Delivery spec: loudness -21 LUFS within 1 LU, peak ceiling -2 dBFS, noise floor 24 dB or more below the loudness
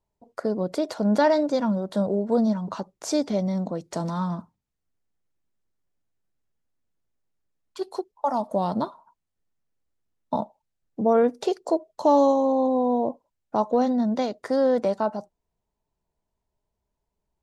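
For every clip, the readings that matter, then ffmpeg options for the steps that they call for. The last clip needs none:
loudness -24.5 LUFS; peak -9.0 dBFS; loudness target -21.0 LUFS
-> -af "volume=3.5dB"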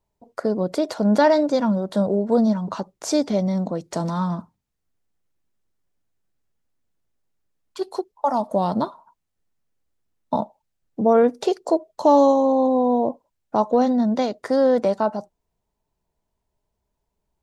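loudness -21.0 LUFS; peak -5.5 dBFS; noise floor -78 dBFS

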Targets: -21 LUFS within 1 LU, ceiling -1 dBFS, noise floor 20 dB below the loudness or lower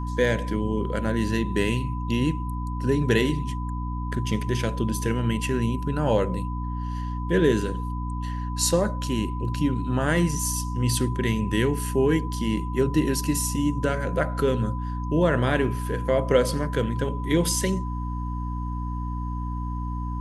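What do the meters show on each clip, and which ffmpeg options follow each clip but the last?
hum 60 Hz; harmonics up to 300 Hz; hum level -27 dBFS; steady tone 1000 Hz; tone level -36 dBFS; loudness -25.5 LUFS; peak -7.5 dBFS; loudness target -21.0 LUFS
-> -af "bandreject=f=60:t=h:w=6,bandreject=f=120:t=h:w=6,bandreject=f=180:t=h:w=6,bandreject=f=240:t=h:w=6,bandreject=f=300:t=h:w=6"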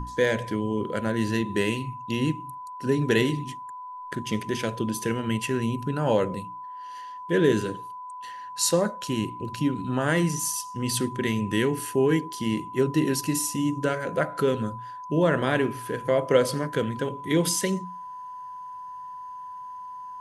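hum none; steady tone 1000 Hz; tone level -36 dBFS
-> -af "bandreject=f=1k:w=30"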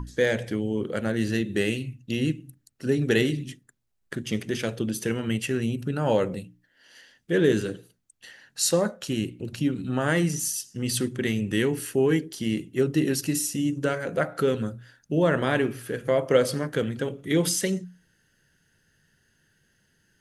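steady tone none; loudness -26.0 LUFS; peak -7.0 dBFS; loudness target -21.0 LUFS
-> -af "volume=5dB"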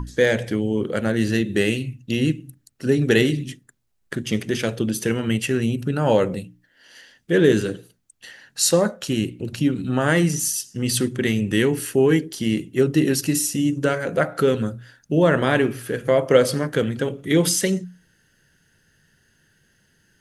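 loudness -21.0 LUFS; peak -2.0 dBFS; noise floor -64 dBFS

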